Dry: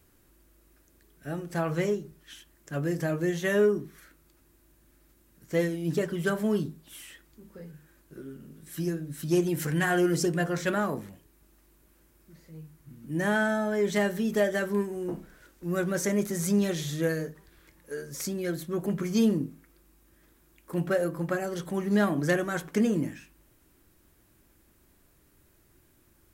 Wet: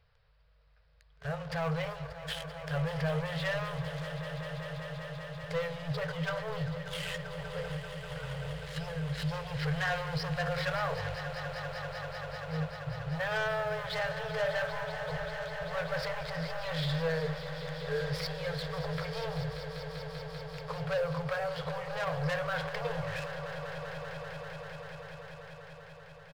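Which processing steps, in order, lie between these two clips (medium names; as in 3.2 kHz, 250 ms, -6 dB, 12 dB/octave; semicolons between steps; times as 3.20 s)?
resampled via 11.025 kHz; waveshaping leveller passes 3; peak limiter -28.5 dBFS, peak gain reduction 15 dB; echo with a slow build-up 195 ms, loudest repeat 5, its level -13 dB; FFT band-reject 170–420 Hz; trim +2.5 dB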